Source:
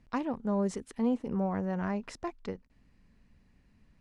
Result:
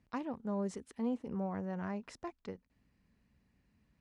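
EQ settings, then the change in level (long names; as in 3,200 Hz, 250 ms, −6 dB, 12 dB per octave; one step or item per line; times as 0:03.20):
high-pass filter 52 Hz
−6.5 dB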